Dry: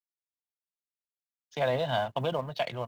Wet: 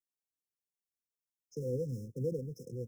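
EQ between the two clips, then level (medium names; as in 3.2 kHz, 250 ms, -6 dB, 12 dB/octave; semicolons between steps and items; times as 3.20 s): brick-wall FIR band-stop 520–5100 Hz; -1.5 dB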